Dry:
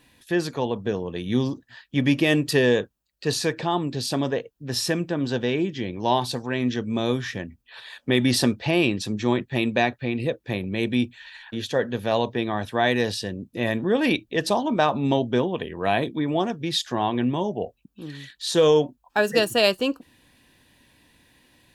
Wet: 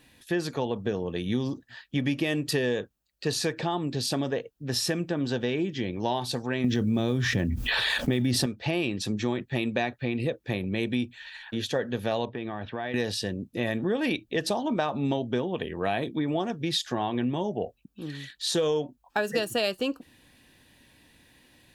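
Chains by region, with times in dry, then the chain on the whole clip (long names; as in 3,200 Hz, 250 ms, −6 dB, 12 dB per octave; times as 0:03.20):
0:06.64–0:08.46: one scale factor per block 7 bits + low-shelf EQ 290 Hz +10 dB + envelope flattener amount 70%
0:12.25–0:12.94: low-pass filter 3,300 Hz 24 dB per octave + downward compressor 5 to 1, threshold −29 dBFS
whole clip: downward compressor 4 to 1, threshold −24 dBFS; notch filter 1,000 Hz, Q 15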